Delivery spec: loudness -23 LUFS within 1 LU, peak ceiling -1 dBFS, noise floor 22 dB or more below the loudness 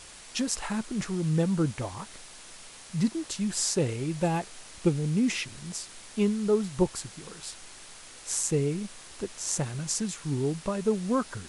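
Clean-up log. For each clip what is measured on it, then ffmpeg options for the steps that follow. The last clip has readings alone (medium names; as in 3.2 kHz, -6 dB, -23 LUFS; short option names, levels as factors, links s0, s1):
noise floor -48 dBFS; noise floor target -52 dBFS; loudness -29.5 LUFS; peak level -11.0 dBFS; loudness target -23.0 LUFS
-> -af "afftdn=nr=6:nf=-48"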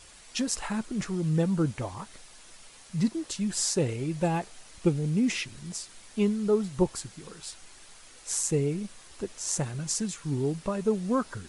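noise floor -52 dBFS; loudness -29.5 LUFS; peak level -11.0 dBFS; loudness target -23.0 LUFS
-> -af "volume=2.11"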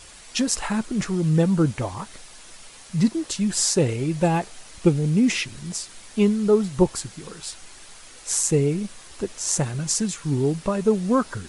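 loudness -23.0 LUFS; peak level -4.5 dBFS; noise floor -45 dBFS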